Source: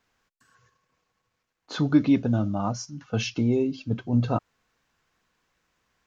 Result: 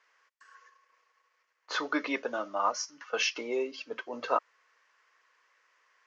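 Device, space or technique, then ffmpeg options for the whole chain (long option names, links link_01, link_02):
phone speaker on a table: -af "highpass=frequency=490:width=0.5412,highpass=frequency=490:width=1.3066,equalizer=frequency=740:width_type=q:width=4:gain=-8,equalizer=frequency=1100:width_type=q:width=4:gain=5,equalizer=frequency=1900:width_type=q:width=4:gain=7,equalizer=frequency=3800:width_type=q:width=4:gain=-6,lowpass=frequency=6400:width=0.5412,lowpass=frequency=6400:width=1.3066,volume=3.5dB"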